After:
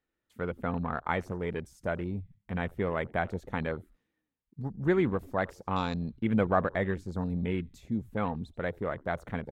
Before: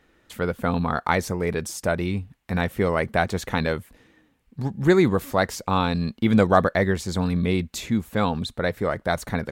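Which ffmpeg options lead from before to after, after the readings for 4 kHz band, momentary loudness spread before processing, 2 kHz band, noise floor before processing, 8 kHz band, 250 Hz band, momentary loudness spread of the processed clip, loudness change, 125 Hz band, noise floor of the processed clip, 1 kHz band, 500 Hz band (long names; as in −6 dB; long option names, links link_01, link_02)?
−14.5 dB, 10 LU, −9.0 dB, −64 dBFS, below −20 dB, −8.5 dB, 10 LU, −8.5 dB, −8.5 dB, −85 dBFS, −8.5 dB, −8.5 dB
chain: -filter_complex "[0:a]asplit=4[link_01][link_02][link_03][link_04];[link_02]adelay=86,afreqshift=-100,volume=-22dB[link_05];[link_03]adelay=172,afreqshift=-200,volume=-28.4dB[link_06];[link_04]adelay=258,afreqshift=-300,volume=-34.8dB[link_07];[link_01][link_05][link_06][link_07]amix=inputs=4:normalize=0,afwtdn=0.0224,volume=-8.5dB"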